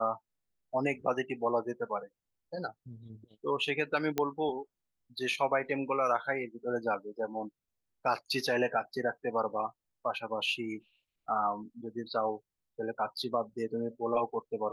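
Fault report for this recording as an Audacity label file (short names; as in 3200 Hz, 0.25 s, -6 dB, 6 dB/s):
4.180000	4.180000	pop -15 dBFS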